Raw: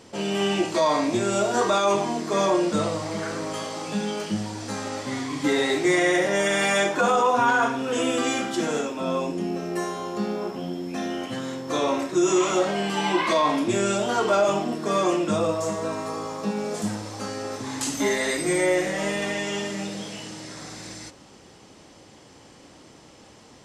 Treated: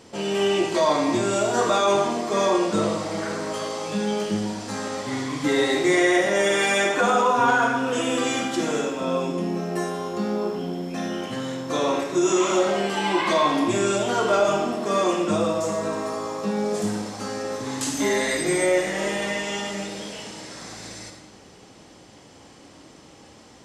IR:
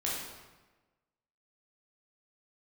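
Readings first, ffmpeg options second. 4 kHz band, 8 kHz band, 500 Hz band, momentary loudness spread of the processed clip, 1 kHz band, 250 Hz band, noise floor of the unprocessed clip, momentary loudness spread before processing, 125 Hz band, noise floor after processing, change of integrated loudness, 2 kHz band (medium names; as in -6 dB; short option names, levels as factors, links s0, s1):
+1.0 dB, +1.0 dB, +1.5 dB, 10 LU, +1.0 dB, +1.0 dB, -50 dBFS, 11 LU, +0.5 dB, -49 dBFS, +1.0 dB, +1.5 dB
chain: -filter_complex "[0:a]asplit=2[s0][s1];[1:a]atrim=start_sample=2205,adelay=53[s2];[s1][s2]afir=irnorm=-1:irlink=0,volume=0.299[s3];[s0][s3]amix=inputs=2:normalize=0"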